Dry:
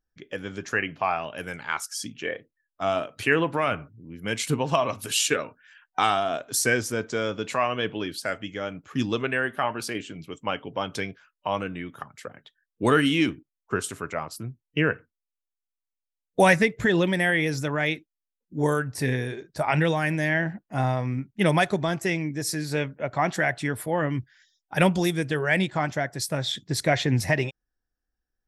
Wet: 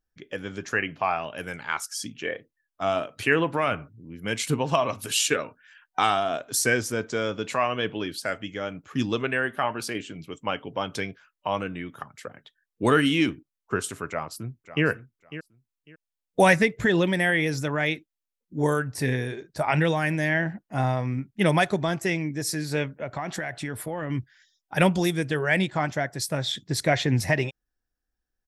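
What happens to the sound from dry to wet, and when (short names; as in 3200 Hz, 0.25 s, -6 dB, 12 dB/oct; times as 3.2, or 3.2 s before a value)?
14.09–14.85 echo throw 0.55 s, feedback 20%, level -14 dB
22.92–24.1 compressor 10:1, threshold -26 dBFS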